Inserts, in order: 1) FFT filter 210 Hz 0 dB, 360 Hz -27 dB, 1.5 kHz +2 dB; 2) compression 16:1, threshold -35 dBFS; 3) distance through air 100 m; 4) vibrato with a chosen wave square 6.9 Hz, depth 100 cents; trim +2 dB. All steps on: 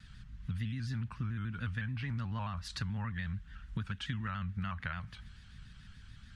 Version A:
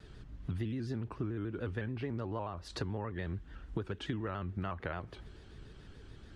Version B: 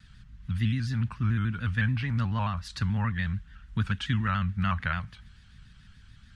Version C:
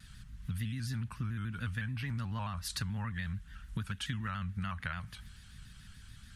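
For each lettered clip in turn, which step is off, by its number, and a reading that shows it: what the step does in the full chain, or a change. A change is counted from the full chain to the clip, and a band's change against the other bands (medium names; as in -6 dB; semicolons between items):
1, 500 Hz band +19.0 dB; 2, mean gain reduction 5.5 dB; 3, 8 kHz band +9.0 dB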